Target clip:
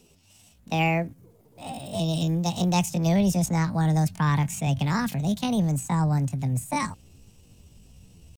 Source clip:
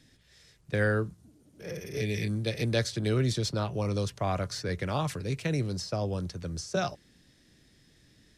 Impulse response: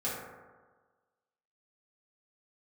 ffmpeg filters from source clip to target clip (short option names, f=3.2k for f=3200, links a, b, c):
-af "asetrate=68011,aresample=44100,atempo=0.64842,asubboost=boost=7.5:cutoff=130,volume=3dB"